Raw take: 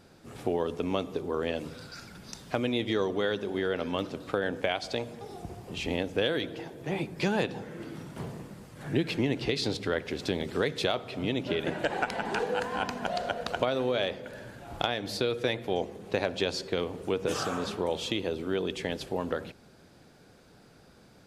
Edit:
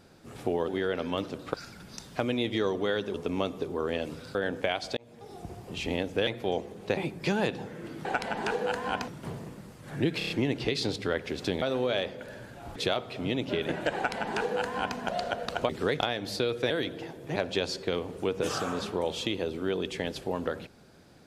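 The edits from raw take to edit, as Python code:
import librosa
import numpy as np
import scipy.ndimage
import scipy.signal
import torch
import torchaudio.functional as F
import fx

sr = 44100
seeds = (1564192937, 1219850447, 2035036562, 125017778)

y = fx.edit(x, sr, fx.swap(start_s=0.68, length_s=1.21, other_s=3.49, other_length_s=0.86),
    fx.fade_in_span(start_s=4.97, length_s=0.66, curve='qsin'),
    fx.swap(start_s=6.27, length_s=0.66, other_s=15.51, other_length_s=0.7),
    fx.stutter(start_s=9.11, slice_s=0.03, count=5),
    fx.swap(start_s=10.43, length_s=0.31, other_s=13.67, other_length_s=1.14),
    fx.duplicate(start_s=11.93, length_s=1.03, to_s=8.01), tone=tone)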